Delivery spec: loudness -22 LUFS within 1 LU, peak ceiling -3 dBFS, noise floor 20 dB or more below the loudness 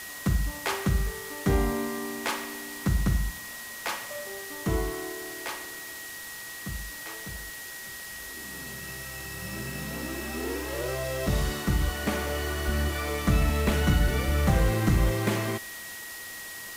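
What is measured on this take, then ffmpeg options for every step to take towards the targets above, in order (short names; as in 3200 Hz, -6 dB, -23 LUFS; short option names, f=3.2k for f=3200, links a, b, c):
steady tone 1900 Hz; tone level -41 dBFS; noise floor -40 dBFS; noise floor target -50 dBFS; loudness -30.0 LUFS; peak -12.5 dBFS; loudness target -22.0 LUFS
-> -af "bandreject=f=1.9k:w=30"
-af "afftdn=nr=10:nf=-40"
-af "volume=8dB"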